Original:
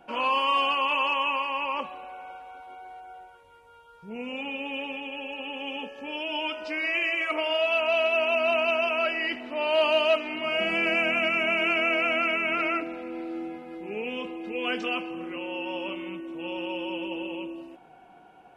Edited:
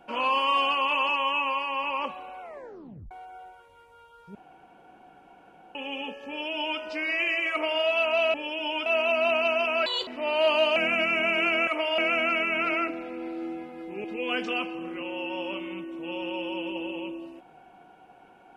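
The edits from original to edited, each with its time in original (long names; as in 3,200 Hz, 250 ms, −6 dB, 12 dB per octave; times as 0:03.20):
0:01.09–0:01.59: time-stretch 1.5×
0:02.16: tape stop 0.70 s
0:04.10–0:05.50: fill with room tone
0:06.03–0:06.55: duplicate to 0:08.09
0:07.26–0:07.57: duplicate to 0:11.91
0:09.09–0:09.41: play speed 151%
0:10.10–0:11.00: remove
0:13.97–0:14.40: remove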